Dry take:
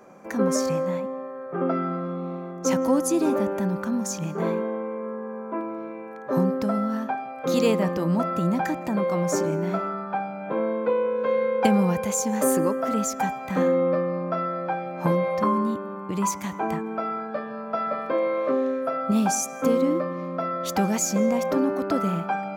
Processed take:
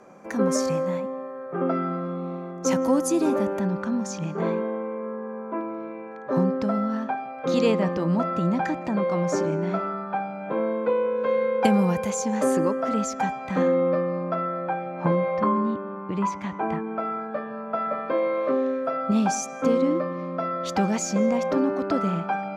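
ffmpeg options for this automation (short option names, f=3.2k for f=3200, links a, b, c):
-af "asetnsamples=n=441:p=0,asendcmd='3.59 lowpass f 5300;10.3 lowpass f 12000;12.1 lowpass f 6100;14.34 lowpass f 3000;18.08 lowpass f 5900',lowpass=11k"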